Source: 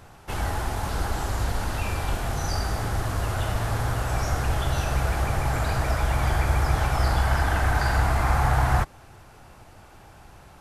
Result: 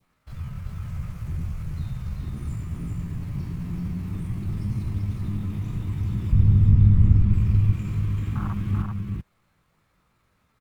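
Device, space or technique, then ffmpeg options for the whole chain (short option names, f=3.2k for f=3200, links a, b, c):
chipmunk voice: -filter_complex "[0:a]asetrate=68011,aresample=44100,atempo=0.64842,asettb=1/sr,asplit=3[a][b][c];[a]atrim=end=6.324[d];[b]atrim=start=6.32:end=7.34,asetpts=PTS-STARTPTS,afade=t=in:d=0.004:c=qsin,afade=t=out:st=1.016:d=0.004:c=qsin,aemphasis=mode=reproduction:type=bsi[e];[c]atrim=start=7.336[f];[d][e]acrossfade=d=0.004:c1=hsin:c2=qsin[g];[g][f]acrossfade=d=0.004:c1=qsin:c2=hsin,afwtdn=0.1,adynamicequalizer=threshold=0.00355:dfrequency=1500:dqfactor=1.2:tfrequency=1500:tqfactor=1.2:attack=5:release=100:ratio=0.375:range=3:mode=cutabove:tftype=bell,aecho=1:1:388:0.668,volume=-4dB"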